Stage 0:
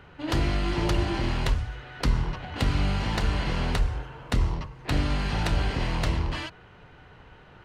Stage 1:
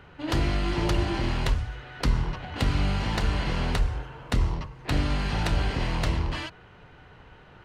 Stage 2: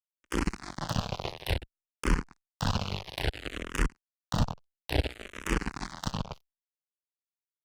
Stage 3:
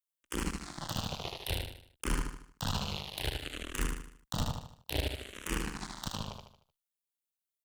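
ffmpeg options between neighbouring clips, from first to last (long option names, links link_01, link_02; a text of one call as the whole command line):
ffmpeg -i in.wav -af anull out.wav
ffmpeg -i in.wav -filter_complex "[0:a]aecho=1:1:30|63|99.3|139.2|183.2:0.631|0.398|0.251|0.158|0.1,acrusher=bits=2:mix=0:aa=0.5,asplit=2[link_01][link_02];[link_02]afreqshift=-0.58[link_03];[link_01][link_03]amix=inputs=2:normalize=1,volume=-1dB" out.wav
ffmpeg -i in.wav -filter_complex "[0:a]aexciter=amount=2:drive=4.1:freq=2900,aeval=exprs='0.178*(abs(mod(val(0)/0.178+3,4)-2)-1)':channel_layout=same,asplit=2[link_01][link_02];[link_02]aecho=0:1:76|152|228|304|380:0.631|0.271|0.117|0.0502|0.0216[link_03];[link_01][link_03]amix=inputs=2:normalize=0,volume=-6.5dB" out.wav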